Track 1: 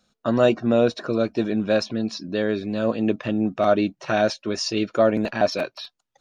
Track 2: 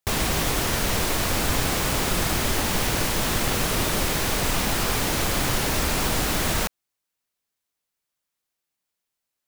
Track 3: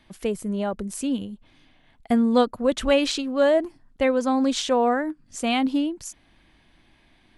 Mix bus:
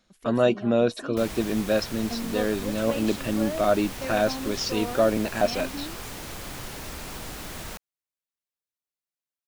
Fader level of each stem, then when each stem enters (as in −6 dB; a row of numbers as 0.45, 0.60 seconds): −3.0, −13.5, −14.0 decibels; 0.00, 1.10, 0.00 seconds